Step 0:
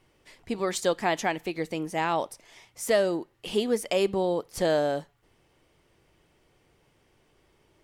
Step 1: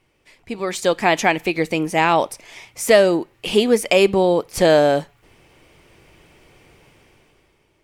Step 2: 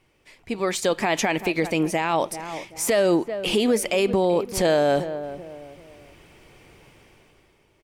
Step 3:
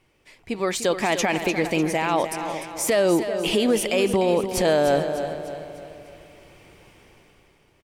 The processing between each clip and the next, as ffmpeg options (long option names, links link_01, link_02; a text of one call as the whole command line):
ffmpeg -i in.wav -af "deesser=0.55,equalizer=frequency=2400:width_type=o:width=0.3:gain=6.5,dynaudnorm=framelen=130:gausssize=13:maxgain=13.5dB" out.wav
ffmpeg -i in.wav -filter_complex "[0:a]asplit=2[link_01][link_02];[link_02]adelay=385,lowpass=frequency=1100:poles=1,volume=-16dB,asplit=2[link_03][link_04];[link_04]adelay=385,lowpass=frequency=1100:poles=1,volume=0.38,asplit=2[link_05][link_06];[link_06]adelay=385,lowpass=frequency=1100:poles=1,volume=0.38[link_07];[link_01][link_03][link_05][link_07]amix=inputs=4:normalize=0,alimiter=limit=-12dB:level=0:latency=1:release=43" out.wav
ffmpeg -i in.wav -af "aecho=1:1:299|598|897|1196|1495:0.316|0.149|0.0699|0.0328|0.0154" out.wav